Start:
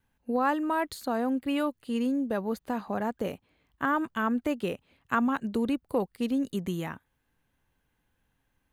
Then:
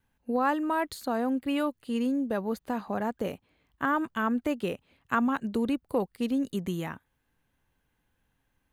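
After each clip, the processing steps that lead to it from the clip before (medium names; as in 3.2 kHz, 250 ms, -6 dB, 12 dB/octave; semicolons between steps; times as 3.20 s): no audible change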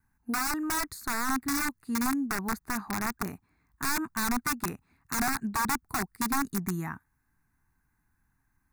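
integer overflow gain 22.5 dB; static phaser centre 1.3 kHz, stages 4; trim +2.5 dB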